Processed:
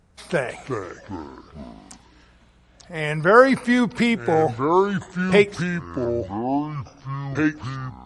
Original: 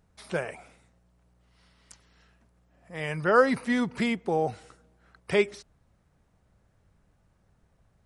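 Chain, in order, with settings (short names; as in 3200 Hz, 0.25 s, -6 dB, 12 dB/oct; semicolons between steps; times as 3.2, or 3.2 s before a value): 4.34–5.32 low-pass opened by the level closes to 390 Hz, open at -22.5 dBFS; echoes that change speed 0.253 s, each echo -5 st, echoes 3, each echo -6 dB; gain +7.5 dB; AAC 96 kbps 22050 Hz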